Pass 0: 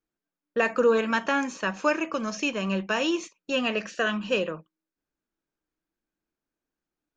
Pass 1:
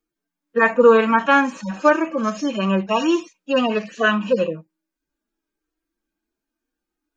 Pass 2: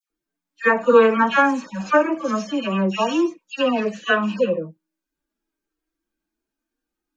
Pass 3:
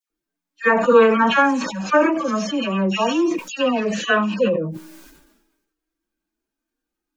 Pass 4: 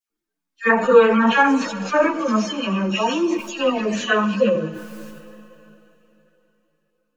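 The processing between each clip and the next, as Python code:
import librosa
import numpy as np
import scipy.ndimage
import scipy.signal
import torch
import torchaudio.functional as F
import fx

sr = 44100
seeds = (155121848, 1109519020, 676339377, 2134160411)

y1 = fx.hpss_only(x, sr, part='harmonic')
y1 = fx.dynamic_eq(y1, sr, hz=1100.0, q=1.2, threshold_db=-39.0, ratio=4.0, max_db=5)
y1 = y1 * librosa.db_to_amplitude(8.0)
y2 = fx.dispersion(y1, sr, late='lows', ms=104.0, hz=1600.0)
y2 = y2 * librosa.db_to_amplitude(-1.0)
y3 = fx.sustainer(y2, sr, db_per_s=51.0)
y4 = fx.rev_schroeder(y3, sr, rt60_s=3.6, comb_ms=29, drr_db=13.5)
y4 = fx.ensemble(y4, sr)
y4 = y4 * librosa.db_to_amplitude(2.5)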